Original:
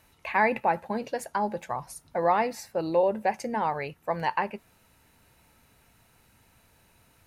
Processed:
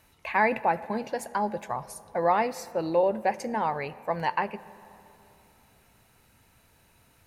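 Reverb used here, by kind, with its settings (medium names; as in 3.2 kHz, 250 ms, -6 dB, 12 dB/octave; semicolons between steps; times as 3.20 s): algorithmic reverb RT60 3.2 s, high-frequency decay 0.45×, pre-delay 30 ms, DRR 18 dB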